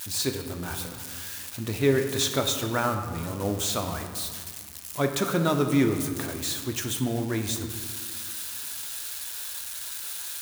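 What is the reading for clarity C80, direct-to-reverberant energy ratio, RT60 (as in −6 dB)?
8.0 dB, 4.5 dB, 1.8 s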